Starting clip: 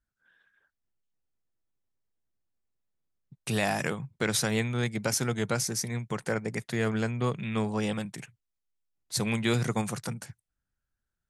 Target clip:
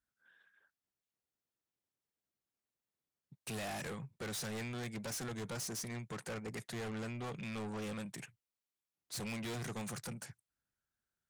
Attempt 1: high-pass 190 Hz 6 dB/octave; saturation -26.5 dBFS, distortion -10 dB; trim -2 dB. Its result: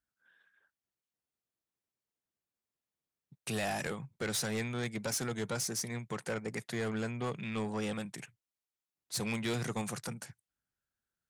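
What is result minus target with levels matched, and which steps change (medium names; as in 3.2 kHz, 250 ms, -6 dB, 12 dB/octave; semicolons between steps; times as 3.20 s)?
saturation: distortion -6 dB
change: saturation -37 dBFS, distortion -4 dB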